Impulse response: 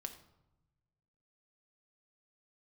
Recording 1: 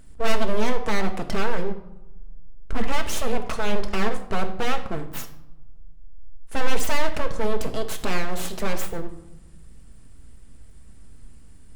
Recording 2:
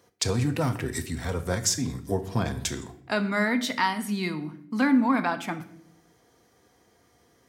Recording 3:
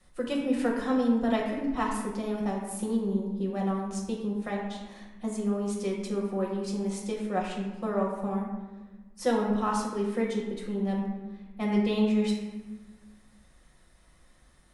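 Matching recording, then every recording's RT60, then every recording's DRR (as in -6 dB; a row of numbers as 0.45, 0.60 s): 1; 0.95, 0.65, 1.2 s; 5.5, 8.0, -2.0 dB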